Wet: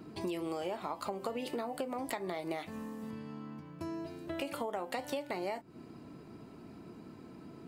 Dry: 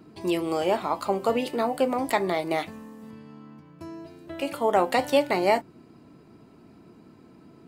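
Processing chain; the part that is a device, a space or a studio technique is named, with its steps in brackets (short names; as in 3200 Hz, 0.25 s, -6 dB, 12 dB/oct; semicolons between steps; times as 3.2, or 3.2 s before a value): serial compression, peaks first (compressor 6:1, threshold -30 dBFS, peak gain reduction 13.5 dB; compressor 2:1, threshold -38 dBFS, peak gain reduction 6.5 dB); gain +1 dB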